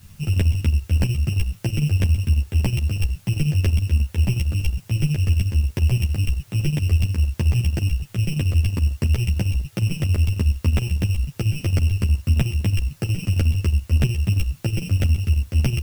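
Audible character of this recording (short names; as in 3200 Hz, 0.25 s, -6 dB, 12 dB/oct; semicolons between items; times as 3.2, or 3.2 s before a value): a buzz of ramps at a fixed pitch in blocks of 16 samples; chopped level 11 Hz, depth 60%, duty 60%; a quantiser's noise floor 10-bit, dither triangular; a shimmering, thickened sound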